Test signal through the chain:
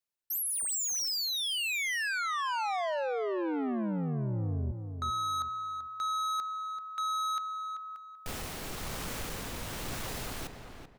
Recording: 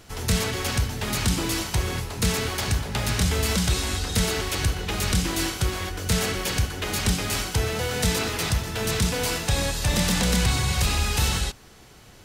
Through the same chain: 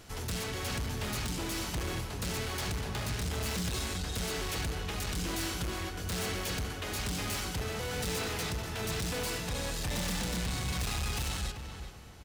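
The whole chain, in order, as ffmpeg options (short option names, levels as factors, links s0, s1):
-filter_complex "[0:a]tremolo=f=1.1:d=0.36,asoftclip=type=tanh:threshold=0.0376,asplit=2[s0][s1];[s1]adelay=386,lowpass=f=2300:p=1,volume=0.447,asplit=2[s2][s3];[s3]adelay=386,lowpass=f=2300:p=1,volume=0.29,asplit=2[s4][s5];[s5]adelay=386,lowpass=f=2300:p=1,volume=0.29,asplit=2[s6][s7];[s7]adelay=386,lowpass=f=2300:p=1,volume=0.29[s8];[s0][s2][s4][s6][s8]amix=inputs=5:normalize=0,volume=0.708"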